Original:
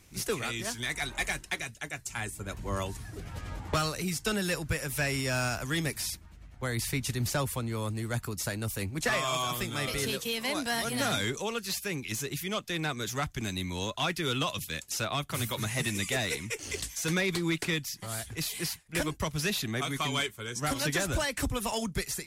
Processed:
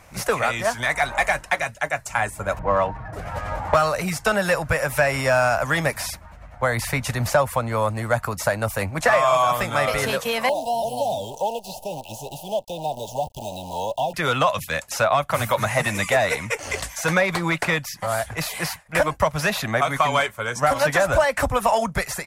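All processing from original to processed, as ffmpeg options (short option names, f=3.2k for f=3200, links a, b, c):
-filter_complex "[0:a]asettb=1/sr,asplit=3[a][b][c];[a]atrim=end=2.594[d];[b]atrim=start=2.59:end=3.13,asetpts=PTS-STARTPTS,afade=t=in:d=0.004:c=qsin,afade=t=out:st=0.536:d=0.004:c=qsin,equalizer=f=7.7k:t=o:w=0.95:g=-7.5,aecho=1:1:6.3:0.45,atrim=end_sample=23814,adynamicsmooth=sensitivity=8:basefreq=1.4k[e];[c]atrim=start=3.126[f];[d][e]acrossfade=d=0.004:c1=hsin:c2=qsin[g];[g][f]acrossfade=d=0.004:c1=qsin:c2=hsin,asettb=1/sr,asplit=3[h][i][j];[h]atrim=end=10.494[k];[i]atrim=start=10.49:end=14.14,asetpts=PTS-STARTPTS,afade=t=in:d=0.004:c=qsin,afade=t=out:st=3.646:d=0.004:c=qsin,acrusher=bits=7:dc=4:mix=0:aa=0.000001,acrossover=split=620|1700[l][m][n];[l]acompressor=threshold=-43dB:ratio=4[o];[m]acompressor=threshold=-41dB:ratio=4[p];[n]acompressor=threshold=-43dB:ratio=4[q];[o][p][q]amix=inputs=3:normalize=0,asuperstop=centerf=1600:order=20:qfactor=0.89[r];[j]atrim=start=14.136[s];[k][r]acrossfade=d=0.004:c1=hsin:c2=qsin[t];[t][s]acrossfade=d=0.004:c1=qsin:c2=hsin,firequalizer=gain_entry='entry(170,0);entry(370,-5);entry(570,14);entry(3300,-3)':delay=0.05:min_phase=1,acompressor=threshold=-24dB:ratio=2,volume=7dB"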